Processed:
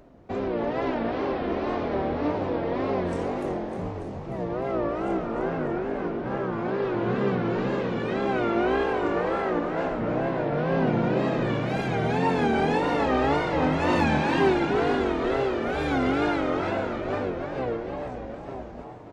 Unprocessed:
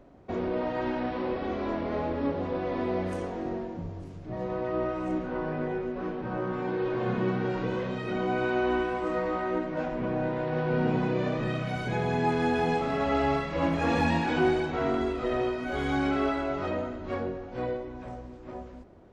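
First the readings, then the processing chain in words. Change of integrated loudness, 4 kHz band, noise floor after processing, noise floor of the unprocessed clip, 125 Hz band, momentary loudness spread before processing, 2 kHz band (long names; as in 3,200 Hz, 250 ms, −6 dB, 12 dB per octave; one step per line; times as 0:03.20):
+3.5 dB, +3.5 dB, −37 dBFS, −44 dBFS, +2.5 dB, 9 LU, +3.5 dB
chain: echo with shifted repeats 298 ms, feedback 59%, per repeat +49 Hz, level −6 dB
tape wow and flutter 140 cents
level +2 dB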